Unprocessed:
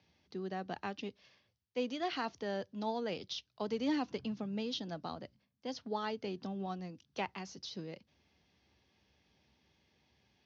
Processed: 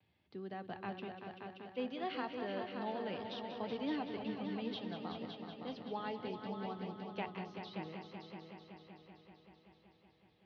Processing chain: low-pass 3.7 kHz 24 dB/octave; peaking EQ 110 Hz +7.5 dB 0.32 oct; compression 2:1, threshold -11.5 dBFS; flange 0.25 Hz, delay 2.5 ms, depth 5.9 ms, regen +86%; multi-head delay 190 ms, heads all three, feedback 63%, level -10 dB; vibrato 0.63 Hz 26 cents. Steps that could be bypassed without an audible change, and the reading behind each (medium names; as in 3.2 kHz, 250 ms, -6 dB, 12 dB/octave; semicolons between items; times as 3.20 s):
compression, threshold -11.5 dBFS: peak at its input -24.0 dBFS